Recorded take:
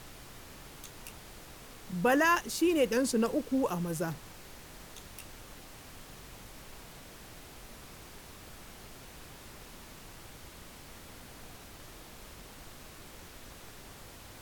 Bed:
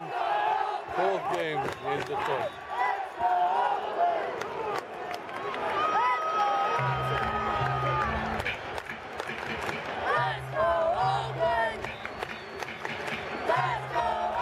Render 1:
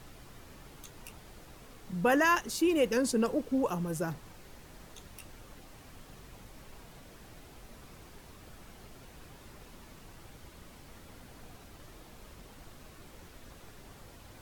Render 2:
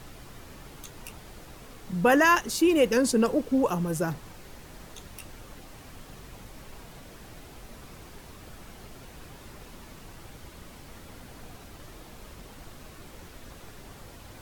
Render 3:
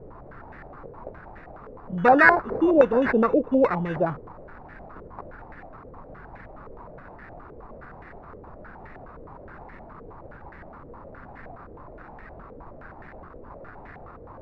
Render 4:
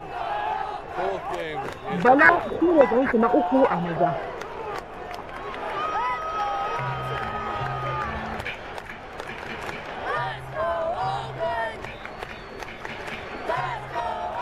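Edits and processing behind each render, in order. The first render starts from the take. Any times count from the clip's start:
noise reduction 6 dB, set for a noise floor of -51 dBFS
trim +5.5 dB
sample-and-hold 14×; step-sequenced low-pass 9.6 Hz 490–1800 Hz
add bed -0.5 dB

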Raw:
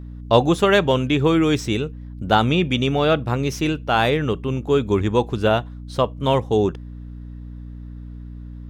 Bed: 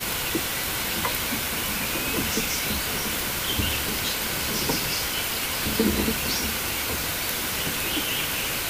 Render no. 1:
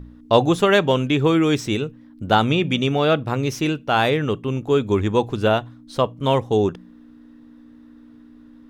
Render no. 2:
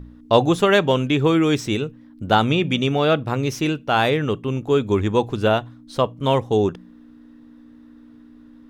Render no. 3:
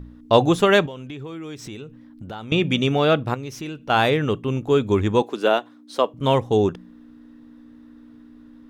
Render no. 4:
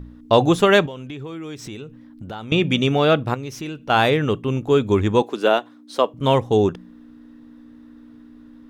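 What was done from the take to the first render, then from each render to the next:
de-hum 60 Hz, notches 3
no audible change
0.86–2.52 s: compression 5:1, threshold -33 dBFS; 3.34–3.90 s: compression 2:1, threshold -36 dBFS; 5.22–6.14 s: high-pass 260 Hz 24 dB/octave
trim +1.5 dB; peak limiter -2 dBFS, peak gain reduction 2 dB

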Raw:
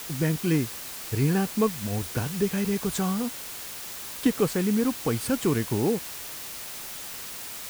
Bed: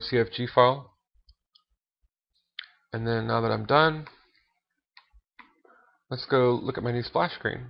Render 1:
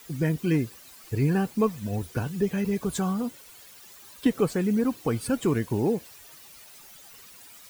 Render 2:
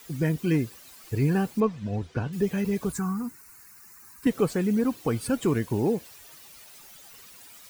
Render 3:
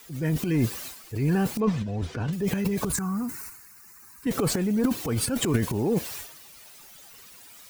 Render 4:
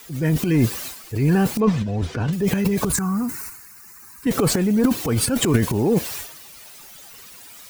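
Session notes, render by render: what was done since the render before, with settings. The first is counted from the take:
noise reduction 14 dB, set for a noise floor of -38 dBFS
1.60–2.33 s: distance through air 130 m; 2.92–4.27 s: static phaser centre 1.4 kHz, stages 4
transient shaper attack -6 dB, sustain +12 dB
trim +6 dB

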